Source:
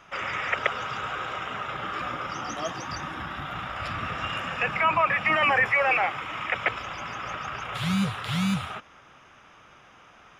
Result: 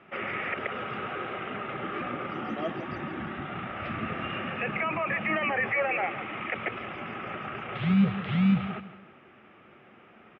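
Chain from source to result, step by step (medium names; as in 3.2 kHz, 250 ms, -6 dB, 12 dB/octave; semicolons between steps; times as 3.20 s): peak limiter -17.5 dBFS, peak gain reduction 9 dB; cabinet simulation 100–2600 Hz, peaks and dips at 220 Hz +9 dB, 370 Hz +9 dB, 1 kHz -9 dB, 1.5 kHz -5 dB; feedback delay 164 ms, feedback 35%, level -14 dB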